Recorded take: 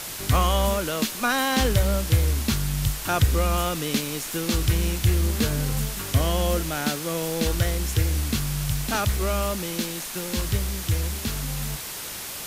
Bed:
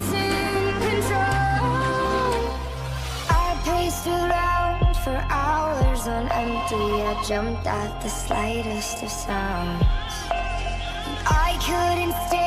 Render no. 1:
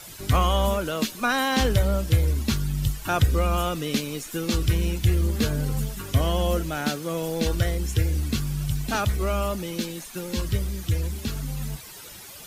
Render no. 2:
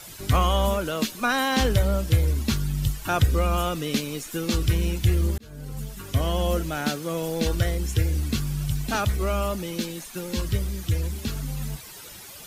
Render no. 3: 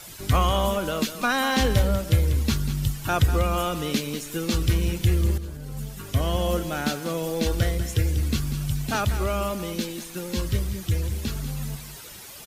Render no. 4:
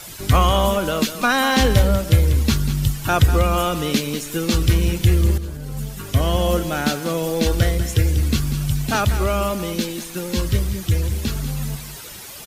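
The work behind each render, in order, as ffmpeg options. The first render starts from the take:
ffmpeg -i in.wav -af "afftdn=noise_reduction=12:noise_floor=-35" out.wav
ffmpeg -i in.wav -filter_complex "[0:a]asplit=2[link_01][link_02];[link_01]atrim=end=5.38,asetpts=PTS-STARTPTS,afade=type=out:start_time=5.376:duration=0.004:curve=hsin[link_03];[link_02]atrim=start=5.38,asetpts=PTS-STARTPTS,afade=type=in:duration=1.38:curve=qsin[link_04];[link_03][link_04]concat=n=2:v=0:a=1" out.wav
ffmpeg -i in.wav -af "aecho=1:1:193:0.266" out.wav
ffmpeg -i in.wav -af "volume=5.5dB" out.wav

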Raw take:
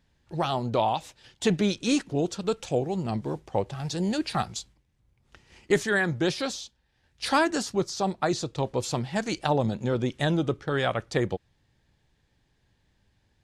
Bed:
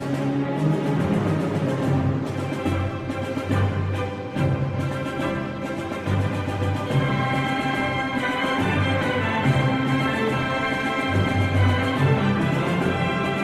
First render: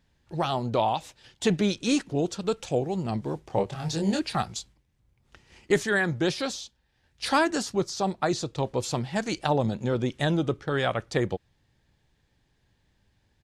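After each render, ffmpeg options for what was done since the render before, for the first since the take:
ffmpeg -i in.wav -filter_complex "[0:a]asplit=3[link_01][link_02][link_03];[link_01]afade=type=out:start_time=3.49:duration=0.02[link_04];[link_02]asplit=2[link_05][link_06];[link_06]adelay=25,volume=-3dB[link_07];[link_05][link_07]amix=inputs=2:normalize=0,afade=type=in:start_time=3.49:duration=0.02,afade=type=out:start_time=4.19:duration=0.02[link_08];[link_03]afade=type=in:start_time=4.19:duration=0.02[link_09];[link_04][link_08][link_09]amix=inputs=3:normalize=0" out.wav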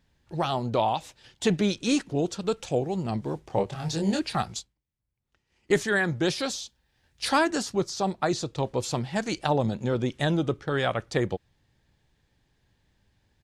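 ffmpeg -i in.wav -filter_complex "[0:a]asettb=1/sr,asplit=3[link_01][link_02][link_03];[link_01]atrim=end=6.234[link_04];[link_02]atrim=start=6.23:end=7.31,asetpts=PTS-STARTPTS,afade=type=in:duration=0.004:curve=qsin,afade=type=out:start_time=1.076:duration=0.004:curve=qsin,highshelf=frequency=5800:gain=5[link_05];[link_03]atrim=start=7.306[link_06];[link_04][link_05]acrossfade=duration=0.004:curve1=hsin:curve2=qsin[link_07];[link_07][link_06]acrossfade=duration=0.004:curve1=qsin:curve2=hsin,asplit=3[link_08][link_09][link_10];[link_08]atrim=end=5.01,asetpts=PTS-STARTPTS,afade=type=out:start_time=4.59:duration=0.42:curve=exp:silence=0.133352[link_11];[link_09]atrim=start=5.01:end=5.29,asetpts=PTS-STARTPTS,volume=-17.5dB[link_12];[link_10]atrim=start=5.29,asetpts=PTS-STARTPTS,afade=type=in:duration=0.42:curve=exp:silence=0.133352[link_13];[link_11][link_12][link_13]concat=n=3:v=0:a=1" out.wav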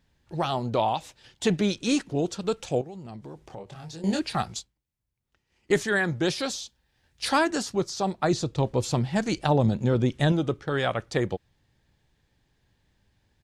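ffmpeg -i in.wav -filter_complex "[0:a]asettb=1/sr,asplit=3[link_01][link_02][link_03];[link_01]atrim=end=2.814[link_04];[link_02]atrim=start=2.81:end=4.04,asetpts=PTS-STARTPTS,afade=type=in:duration=0.004:curve=qsin,afade=type=out:start_time=1.226:duration=0.004:curve=qsin,acompressor=threshold=-41dB:ratio=3:attack=3.2:release=140:knee=1:detection=peak[link_05];[link_03]atrim=start=4.036[link_06];[link_04][link_05]acrossfade=duration=0.004:curve1=hsin:curve2=qsin[link_07];[link_07][link_06]acrossfade=duration=0.004:curve1=qsin:curve2=hsin,asettb=1/sr,asplit=3[link_08][link_09][link_10];[link_08]atrim=end=8.244[link_11];[link_09]atrim=start=8.24:end=10.32,asetpts=PTS-STARTPTS,afade=type=in:duration=0.004:curve=qsin,afade=type=out:start_time=2.076:duration=0.004:curve=qsin,lowshelf=frequency=270:gain=7[link_12];[link_10]atrim=start=10.316[link_13];[link_11][link_12]acrossfade=duration=0.004:curve1=hsin:curve2=qsin[link_14];[link_14][link_13]acrossfade=duration=0.004:curve1=qsin:curve2=hsin" out.wav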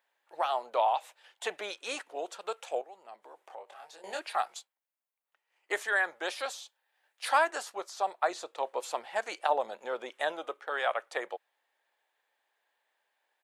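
ffmpeg -i in.wav -af "highpass=frequency=600:width=0.5412,highpass=frequency=600:width=1.3066,equalizer=frequency=5300:width=0.91:gain=-12" out.wav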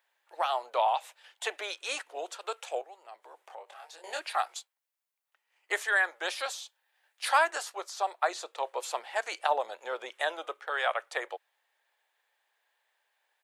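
ffmpeg -i in.wav -af "highpass=frequency=320:width=0.5412,highpass=frequency=320:width=1.3066,tiltshelf=frequency=720:gain=-3.5" out.wav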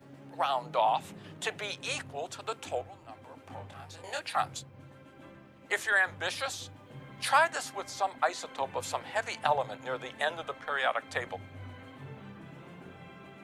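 ffmpeg -i in.wav -i bed.wav -filter_complex "[1:a]volume=-26.5dB[link_01];[0:a][link_01]amix=inputs=2:normalize=0" out.wav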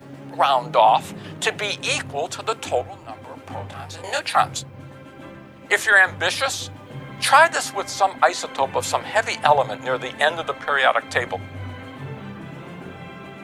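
ffmpeg -i in.wav -af "volume=12dB,alimiter=limit=-2dB:level=0:latency=1" out.wav

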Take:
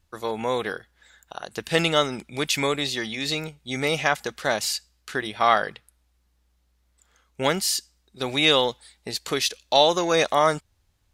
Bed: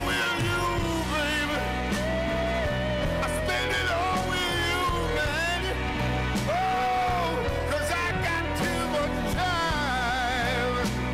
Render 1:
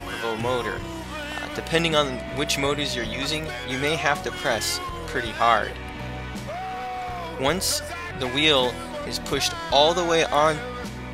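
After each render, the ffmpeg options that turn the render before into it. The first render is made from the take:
ffmpeg -i in.wav -i bed.wav -filter_complex "[1:a]volume=-6dB[link_01];[0:a][link_01]amix=inputs=2:normalize=0" out.wav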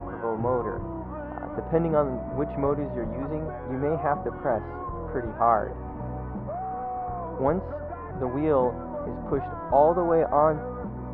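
ffmpeg -i in.wav -af "lowpass=frequency=1100:width=0.5412,lowpass=frequency=1100:width=1.3066" out.wav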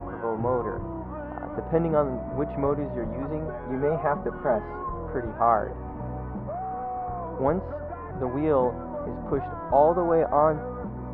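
ffmpeg -i in.wav -filter_complex "[0:a]asettb=1/sr,asplit=3[link_01][link_02][link_03];[link_01]atrim=end=3.484[link_04];[link_02]atrim=start=3.48:end=4.94,asetpts=PTS-STARTPTS,afade=type=in:duration=0.004:curve=qsin,afade=type=out:start_time=1.456:duration=0.004:curve=qsin,aecho=1:1:4.8:0.54,atrim=end_sample=64386[link_05];[link_03]atrim=start=4.936[link_06];[link_04][link_05]acrossfade=duration=0.004:curve1=hsin:curve2=qsin[link_07];[link_07][link_06]acrossfade=duration=0.004:curve1=qsin:curve2=hsin" out.wav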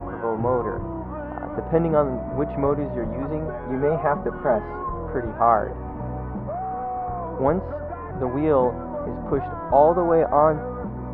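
ffmpeg -i in.wav -af "volume=3.5dB" out.wav

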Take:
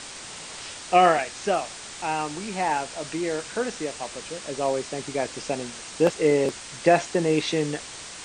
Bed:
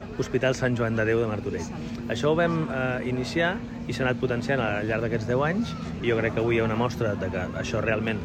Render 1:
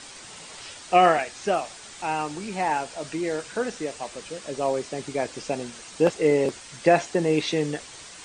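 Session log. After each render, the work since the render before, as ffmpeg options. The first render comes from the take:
ffmpeg -i in.wav -af "afftdn=noise_reduction=6:noise_floor=-40" out.wav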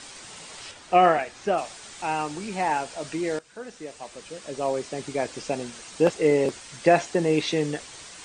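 ffmpeg -i in.wav -filter_complex "[0:a]asettb=1/sr,asplit=3[link_01][link_02][link_03];[link_01]atrim=end=0.714[link_04];[link_02]atrim=start=0.71:end=1.58,asetpts=PTS-STARTPTS,afade=type=in:duration=0.004:curve=qsin,afade=type=out:start_time=0.866:duration=0.004:curve=qsin,highshelf=frequency=3300:gain=-8.5[link_05];[link_03]atrim=start=1.576[link_06];[link_04][link_05]acrossfade=duration=0.004:curve1=hsin:curve2=qsin[link_07];[link_07][link_06]acrossfade=duration=0.004:curve1=qsin:curve2=hsin,asplit=2[link_08][link_09];[link_08]atrim=end=3.39,asetpts=PTS-STARTPTS,afade=type=out:start_time=3.386:duration=0.004:curve=hsin:silence=0.125893[link_10];[link_09]atrim=start=3.39,asetpts=PTS-STARTPTS,afade=type=in:duration=2.05:curve=qsin:silence=0.125893[link_11];[link_10][link_11]concat=n=2:v=0:a=1" out.wav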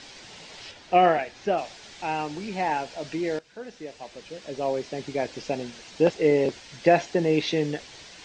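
ffmpeg -i in.wav -af "lowpass=frequency=5800:width=0.5412,lowpass=frequency=5800:width=1.3066,equalizer=frequency=1200:width=2.8:gain=-7" out.wav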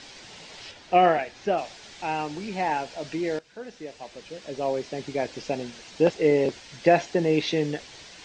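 ffmpeg -i in.wav -af anull out.wav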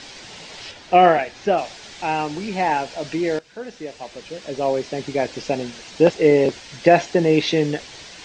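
ffmpeg -i in.wav -af "volume=6dB,alimiter=limit=-2dB:level=0:latency=1" out.wav

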